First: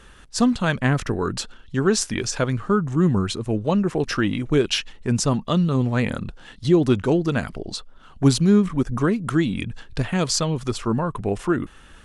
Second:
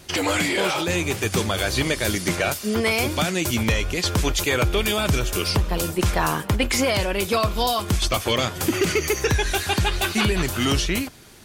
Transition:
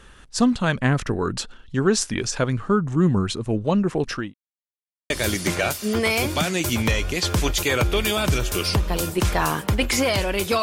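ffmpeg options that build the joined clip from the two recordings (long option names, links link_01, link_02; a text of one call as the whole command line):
ffmpeg -i cue0.wav -i cue1.wav -filter_complex "[0:a]apad=whole_dur=10.62,atrim=end=10.62,asplit=2[link_01][link_02];[link_01]atrim=end=4.34,asetpts=PTS-STARTPTS,afade=type=out:start_time=3.9:duration=0.44:curve=qsin[link_03];[link_02]atrim=start=4.34:end=5.1,asetpts=PTS-STARTPTS,volume=0[link_04];[1:a]atrim=start=1.91:end=7.43,asetpts=PTS-STARTPTS,afade=type=in:duration=0.004:curve=hsin[link_05];[link_03][link_04][link_05]concat=n=3:v=0:a=1" out.wav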